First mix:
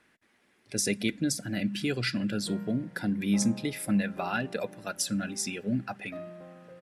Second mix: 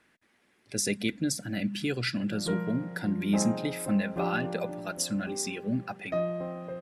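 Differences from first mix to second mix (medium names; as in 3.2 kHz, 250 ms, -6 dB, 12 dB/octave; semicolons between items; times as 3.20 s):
speech: send -7.0 dB; background +12.0 dB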